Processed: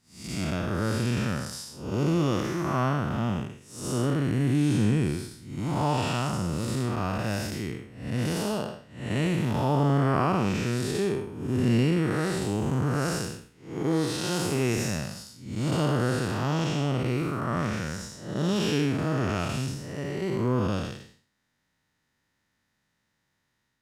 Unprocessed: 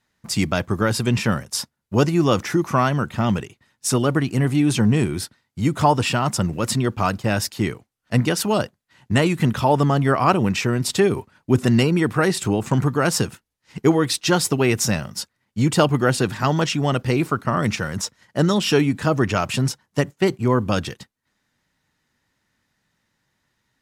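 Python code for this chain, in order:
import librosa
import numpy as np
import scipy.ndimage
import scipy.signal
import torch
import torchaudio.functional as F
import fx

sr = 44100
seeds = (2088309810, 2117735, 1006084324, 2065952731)

y = fx.spec_blur(x, sr, span_ms=252.0)
y = y * 10.0 ** (-3.0 / 20.0)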